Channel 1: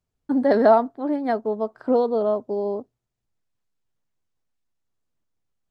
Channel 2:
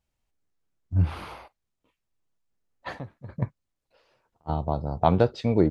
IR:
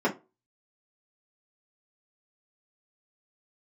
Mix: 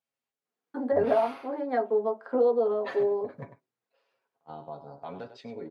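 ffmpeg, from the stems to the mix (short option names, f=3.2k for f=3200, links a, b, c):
-filter_complex "[0:a]highpass=f=500:p=1,highshelf=f=2.5k:g=-10,acompressor=threshold=-30dB:ratio=2,adelay=450,volume=-1dB,asplit=2[a][b];[b]volume=-16dB[c];[1:a]aecho=1:1:7.3:0.56,alimiter=limit=-15dB:level=0:latency=1:release=67,volume=-6.5dB,afade=t=out:st=3.45:d=0.28:silence=0.398107,asplit=4[d][e][f][g];[e]volume=-21.5dB[h];[f]volume=-12.5dB[i];[g]apad=whole_len=271516[j];[a][j]sidechaincompress=threshold=-55dB:ratio=8:attack=16:release=119[k];[2:a]atrim=start_sample=2205[l];[c][h]amix=inputs=2:normalize=0[m];[m][l]afir=irnorm=-1:irlink=0[n];[i]aecho=0:1:99:1[o];[k][d][n][o]amix=inputs=4:normalize=0,highpass=170,bass=f=250:g=-11,treble=f=4k:g=-4,dynaudnorm=f=150:g=9:m=4.5dB"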